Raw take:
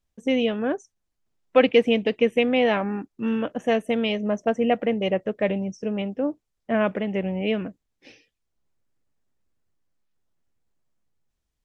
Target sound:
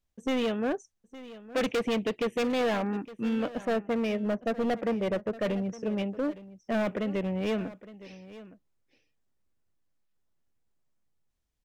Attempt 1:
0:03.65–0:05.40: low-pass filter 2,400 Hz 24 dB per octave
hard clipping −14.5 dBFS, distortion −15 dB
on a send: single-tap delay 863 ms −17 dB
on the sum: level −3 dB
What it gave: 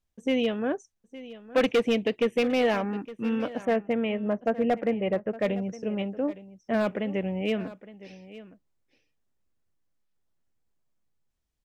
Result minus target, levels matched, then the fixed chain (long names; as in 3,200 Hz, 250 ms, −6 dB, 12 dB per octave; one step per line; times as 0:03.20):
hard clipping: distortion −7 dB
0:03.65–0:05.40: low-pass filter 2,400 Hz 24 dB per octave
hard clipping −21.5 dBFS, distortion −7 dB
on a send: single-tap delay 863 ms −17 dB
on the sum: level −3 dB